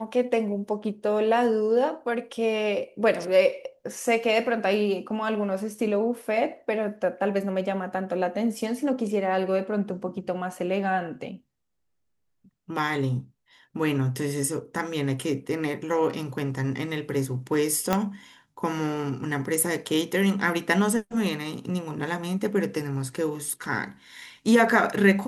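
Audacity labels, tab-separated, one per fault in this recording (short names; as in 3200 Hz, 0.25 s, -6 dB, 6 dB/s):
17.930000	17.930000	pop -8 dBFS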